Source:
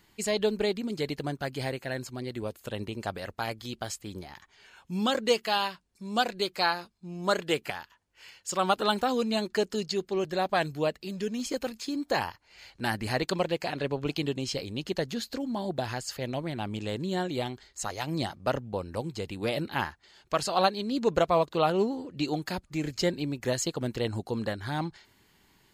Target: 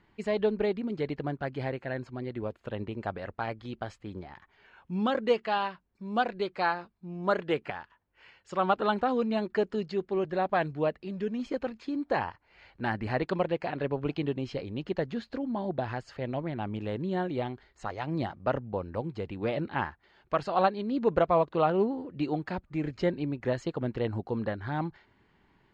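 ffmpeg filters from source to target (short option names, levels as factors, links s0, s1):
-af "lowpass=2000"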